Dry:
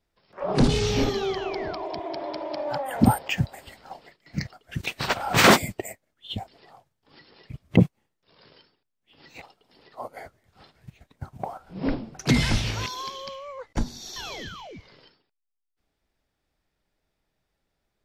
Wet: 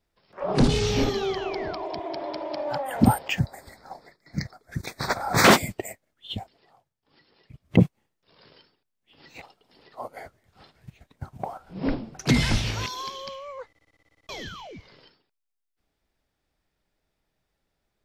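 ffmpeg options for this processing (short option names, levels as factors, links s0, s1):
-filter_complex "[0:a]asettb=1/sr,asplit=3[s0][s1][s2];[s0]atrim=end=3.394[s3];[s1]atrim=start=3.39:end=5.45,asetpts=PTS-STARTPTS,afade=t=in:d=0.004:c=qsin,afade=t=out:st=2.056:d=0.004:c=qsin,asuperstop=centerf=2900:order=4:qfactor=1.7[s4];[s2]atrim=start=5.446[s5];[s3][s4]acrossfade=d=0.004:c1=hsin:c2=qsin[s6];[s6][s5]acrossfade=d=0.004:c1=qsin:c2=hsin,asplit=13[s7][s8][s9][s10][s11][s12][s13][s14][s15][s16][s17][s18][s19];[s7]atrim=end=6.54,asetpts=PTS-STARTPTS,afade=t=out:st=6.34:d=0.2:silence=0.375837[s20];[s8]atrim=start=6.54:end=7.59,asetpts=PTS-STARTPTS,volume=0.376[s21];[s9]atrim=start=7.59:end=13.752,asetpts=PTS-STARTPTS,afade=t=in:d=0.2:silence=0.375837[s22];[s10]atrim=start=13.688:end=13.752[s23];[s11]atrim=start=13.688:end=13.752[s24];[s12]atrim=start=13.688:end=13.752[s25];[s13]atrim=start=13.688:end=13.752[s26];[s14]atrim=start=13.688:end=13.752[s27];[s15]atrim=start=13.688:end=13.752[s28];[s16]atrim=start=13.688:end=13.752[s29];[s17]atrim=start=13.688:end=13.752[s30];[s18]atrim=start=13.688:end=13.752[s31];[s19]atrim=start=14.288[s32];[s20][s21][s22]concat=n=3:v=0:a=1[s33];[s33][s23]acrossfade=d=0.004:c1=hsin:c2=hsin[s34];[s34][s24]acrossfade=d=0.004:c1=hsin:c2=hsin[s35];[s35][s25]acrossfade=d=0.004:c1=hsin:c2=hsin[s36];[s36][s26]acrossfade=d=0.004:c1=hsin:c2=hsin[s37];[s37][s27]acrossfade=d=0.004:c1=hsin:c2=hsin[s38];[s38][s28]acrossfade=d=0.004:c1=hsin:c2=hsin[s39];[s39][s29]acrossfade=d=0.004:c1=hsin:c2=hsin[s40];[s40][s30]acrossfade=d=0.004:c1=hsin:c2=hsin[s41];[s41][s31]acrossfade=d=0.004:c1=hsin:c2=hsin[s42];[s42][s32]acrossfade=d=0.004:c1=hsin:c2=hsin"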